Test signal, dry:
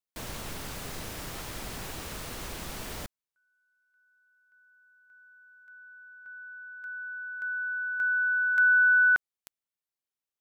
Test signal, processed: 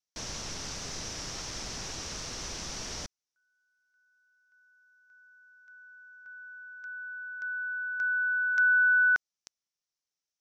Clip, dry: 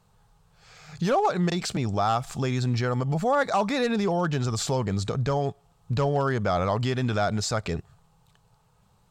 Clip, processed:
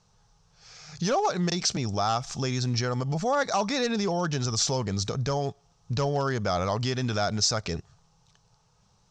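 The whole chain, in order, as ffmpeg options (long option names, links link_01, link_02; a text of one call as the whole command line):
ffmpeg -i in.wav -af "lowpass=frequency=5800:width_type=q:width=5.2,volume=-2.5dB" out.wav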